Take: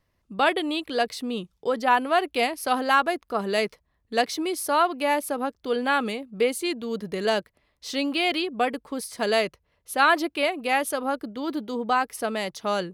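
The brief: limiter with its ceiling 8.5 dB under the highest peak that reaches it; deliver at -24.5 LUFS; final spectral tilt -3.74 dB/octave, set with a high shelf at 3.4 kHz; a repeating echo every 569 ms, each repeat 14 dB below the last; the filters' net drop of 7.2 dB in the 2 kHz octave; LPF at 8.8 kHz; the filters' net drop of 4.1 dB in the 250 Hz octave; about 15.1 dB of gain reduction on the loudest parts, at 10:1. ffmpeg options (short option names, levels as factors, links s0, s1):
-af "lowpass=8800,equalizer=f=250:t=o:g=-5,equalizer=f=2000:t=o:g=-8.5,highshelf=f=3400:g=-4,acompressor=threshold=0.02:ratio=10,alimiter=level_in=2.24:limit=0.0631:level=0:latency=1,volume=0.447,aecho=1:1:569|1138:0.2|0.0399,volume=6.31"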